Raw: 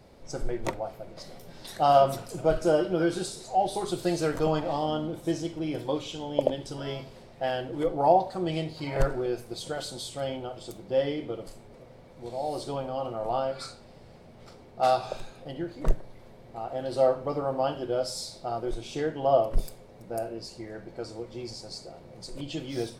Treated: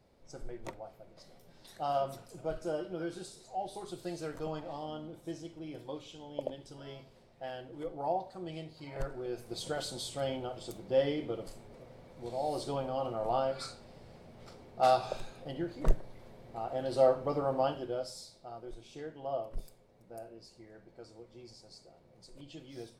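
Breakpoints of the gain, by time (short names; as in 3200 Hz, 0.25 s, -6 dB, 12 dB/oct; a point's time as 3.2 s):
9.11 s -12.5 dB
9.58 s -2.5 dB
17.61 s -2.5 dB
18.33 s -14 dB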